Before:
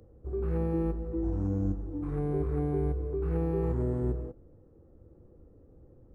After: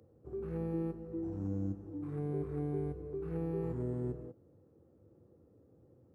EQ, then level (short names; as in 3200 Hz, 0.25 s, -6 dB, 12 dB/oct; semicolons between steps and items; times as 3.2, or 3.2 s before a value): HPF 92 Hz 24 dB/oct; dynamic EQ 1000 Hz, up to -4 dB, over -47 dBFS, Q 0.74; -5.0 dB